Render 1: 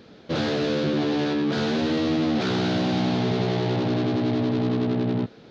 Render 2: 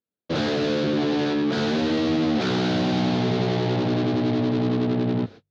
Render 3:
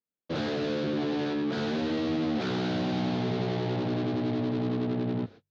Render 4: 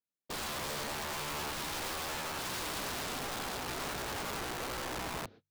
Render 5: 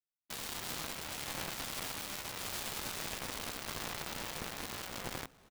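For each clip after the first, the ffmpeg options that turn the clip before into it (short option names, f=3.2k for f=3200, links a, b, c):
-af "agate=range=-48dB:threshold=-39dB:ratio=16:detection=peak,bandreject=f=50:t=h:w=6,bandreject=f=100:t=h:w=6,bandreject=f=150:t=h:w=6,volume=1dB"
-af "highshelf=f=6k:g=-6.5,volume=-6.5dB"
-af "aeval=exprs='(mod(25.1*val(0)+1,2)-1)/25.1':c=same,volume=-5.5dB"
-af "afreqshift=-280,aecho=1:1:389|800:0.178|0.168,aeval=exprs='0.0794*(cos(1*acos(clip(val(0)/0.0794,-1,1)))-cos(1*PI/2))+0.0141*(cos(7*acos(clip(val(0)/0.0794,-1,1)))-cos(7*PI/2))':c=same,volume=1.5dB"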